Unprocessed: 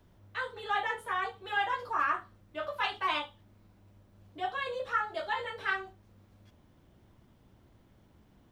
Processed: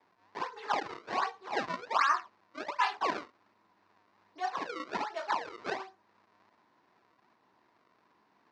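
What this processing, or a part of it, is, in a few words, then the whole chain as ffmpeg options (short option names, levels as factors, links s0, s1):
circuit-bent sampling toy: -af "acrusher=samples=30:mix=1:aa=0.000001:lfo=1:lforange=48:lforate=1.3,highpass=440,equalizer=f=540:t=q:w=4:g=-6,equalizer=f=1000:t=q:w=4:g=9,equalizer=f=1800:t=q:w=4:g=3,equalizer=f=3200:t=q:w=4:g=-6,lowpass=f=5000:w=0.5412,lowpass=f=5000:w=1.3066"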